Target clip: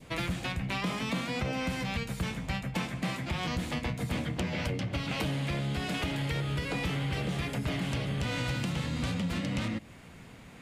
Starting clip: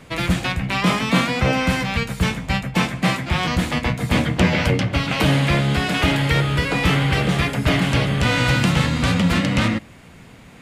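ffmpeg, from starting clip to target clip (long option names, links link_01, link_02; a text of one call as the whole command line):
ffmpeg -i in.wav -af "adynamicequalizer=threshold=0.02:dfrequency=1400:dqfactor=0.91:tfrequency=1400:tqfactor=0.91:attack=5:release=100:ratio=0.375:range=2:mode=cutabove:tftype=bell,acompressor=threshold=-22dB:ratio=6,asoftclip=type=tanh:threshold=-15dB,volume=-6dB" out.wav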